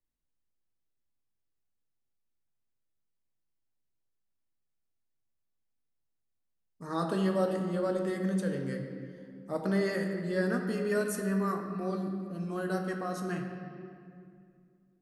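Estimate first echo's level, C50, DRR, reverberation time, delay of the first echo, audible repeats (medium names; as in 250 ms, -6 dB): no echo, 5.0 dB, 3.0 dB, 2.4 s, no echo, no echo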